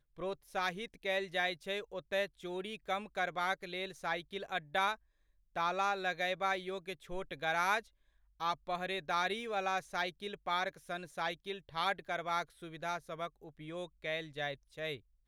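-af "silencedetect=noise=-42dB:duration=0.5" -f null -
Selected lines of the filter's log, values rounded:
silence_start: 4.95
silence_end: 5.56 | silence_duration: 0.61
silence_start: 7.80
silence_end: 8.41 | silence_duration: 0.61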